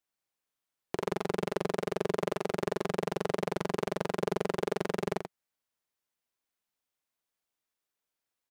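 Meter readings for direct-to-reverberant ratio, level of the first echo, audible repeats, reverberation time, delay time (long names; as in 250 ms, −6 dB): no reverb audible, −7.0 dB, 1, no reverb audible, 84 ms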